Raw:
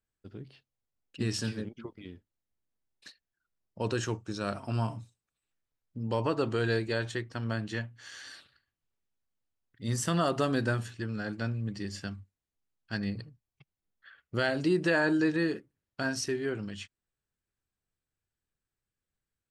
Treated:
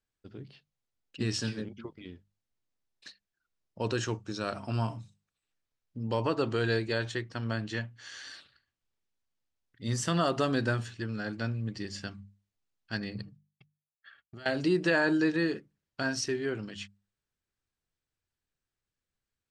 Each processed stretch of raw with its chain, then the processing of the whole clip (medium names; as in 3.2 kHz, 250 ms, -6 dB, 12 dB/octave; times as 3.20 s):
13.22–14.46 s: expander -60 dBFS + compression, threshold -42 dBFS + comb of notches 500 Hz
whole clip: low-pass 6 kHz 12 dB/octave; treble shelf 4.3 kHz +6 dB; hum notches 50/100/150/200 Hz